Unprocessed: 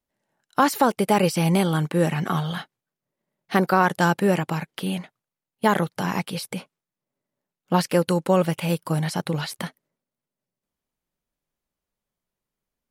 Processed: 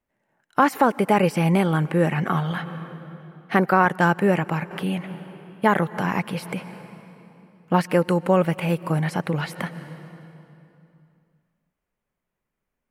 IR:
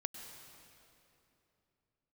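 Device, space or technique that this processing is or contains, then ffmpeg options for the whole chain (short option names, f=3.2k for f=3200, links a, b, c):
ducked reverb: -filter_complex "[0:a]asplit=3[a][b][c];[1:a]atrim=start_sample=2205[d];[b][d]afir=irnorm=-1:irlink=0[e];[c]apad=whole_len=569322[f];[e][f]sidechaincompress=threshold=-33dB:ratio=16:attack=8.7:release=175,volume=-2dB[g];[a][g]amix=inputs=2:normalize=0,asettb=1/sr,asplit=3[h][i][j];[h]atrim=end=3.854[k];[i]atrim=start=3.85:end=4.71,asetpts=PTS-STARTPTS,afade=t=in:d=0.004:c=qsin,afade=t=out:st=0.856:d=0.004:c=qsin,agate=range=-33dB:threshold=-26dB:ratio=3:detection=peak[l];[j]atrim=start=4.706[m];[k][l]acrossfade=d=0.004:c1=hsin:c2=qsin[n];[n][m]acrossfade=d=0.004:c1=qsin:c2=hsin,highshelf=f=3k:t=q:w=1.5:g=-8"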